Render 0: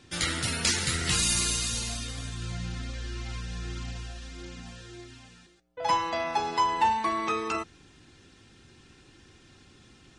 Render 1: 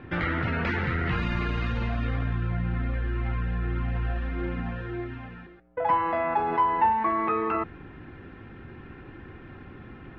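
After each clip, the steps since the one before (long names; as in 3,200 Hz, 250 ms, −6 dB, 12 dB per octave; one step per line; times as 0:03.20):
low-pass filter 2,000 Hz 24 dB per octave
in parallel at +2 dB: compressor whose output falls as the input rises −39 dBFS, ratio −1
on the sum: level +1.5 dB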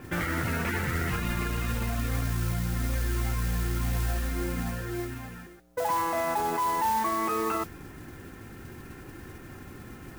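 brickwall limiter −20.5 dBFS, peak gain reduction 8.5 dB
noise that follows the level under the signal 14 dB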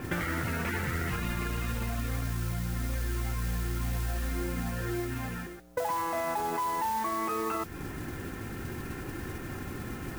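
downward compressor 6 to 1, threshold −35 dBFS, peak gain reduction 11 dB
level +6 dB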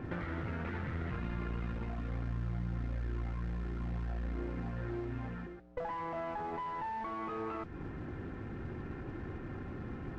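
asymmetric clip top −36 dBFS
head-to-tape spacing loss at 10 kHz 37 dB
level −2 dB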